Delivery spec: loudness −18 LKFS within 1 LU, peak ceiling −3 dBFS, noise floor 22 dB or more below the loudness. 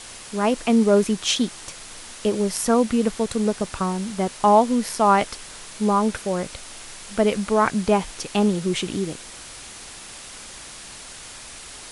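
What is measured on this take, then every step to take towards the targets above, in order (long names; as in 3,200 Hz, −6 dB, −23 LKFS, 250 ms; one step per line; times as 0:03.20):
background noise floor −40 dBFS; target noise floor −44 dBFS; integrated loudness −21.5 LKFS; sample peak −4.5 dBFS; target loudness −18.0 LKFS
→ noise reduction from a noise print 6 dB
level +3.5 dB
brickwall limiter −3 dBFS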